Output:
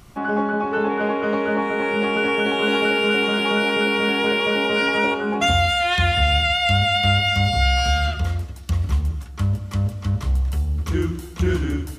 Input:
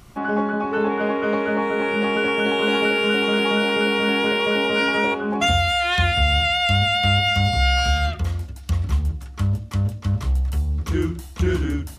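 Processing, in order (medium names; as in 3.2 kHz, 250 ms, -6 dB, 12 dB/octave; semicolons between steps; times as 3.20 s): gated-style reverb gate 330 ms flat, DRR 11.5 dB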